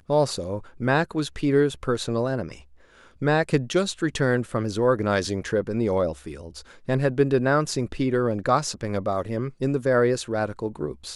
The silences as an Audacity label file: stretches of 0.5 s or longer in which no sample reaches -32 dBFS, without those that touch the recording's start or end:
2.530000	3.220000	silence